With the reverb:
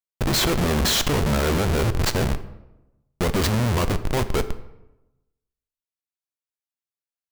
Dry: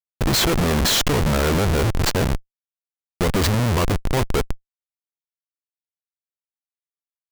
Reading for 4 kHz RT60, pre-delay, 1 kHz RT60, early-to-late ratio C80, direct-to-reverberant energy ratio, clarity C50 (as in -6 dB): 0.60 s, 4 ms, 0.90 s, 16.0 dB, 11.0 dB, 14.0 dB